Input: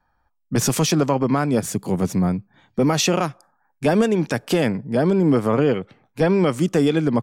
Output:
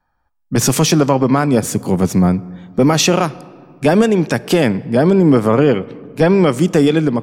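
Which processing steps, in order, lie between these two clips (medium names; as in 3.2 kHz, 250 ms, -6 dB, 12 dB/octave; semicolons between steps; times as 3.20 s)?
level rider; on a send: reverberation RT60 2.1 s, pre-delay 3 ms, DRR 19 dB; on the sum: trim -1 dB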